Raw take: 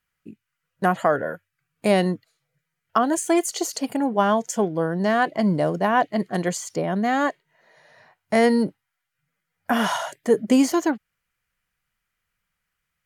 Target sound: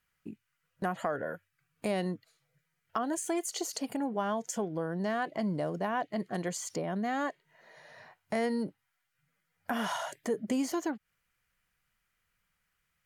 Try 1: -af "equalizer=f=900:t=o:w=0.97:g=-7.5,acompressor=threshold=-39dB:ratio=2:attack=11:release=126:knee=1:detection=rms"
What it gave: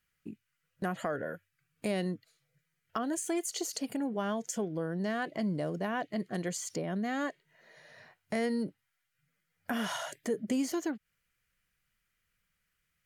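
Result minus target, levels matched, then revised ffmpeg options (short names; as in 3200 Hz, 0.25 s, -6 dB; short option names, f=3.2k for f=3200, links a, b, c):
1000 Hz band -3.5 dB
-af "acompressor=threshold=-39dB:ratio=2:attack=11:release=126:knee=1:detection=rms"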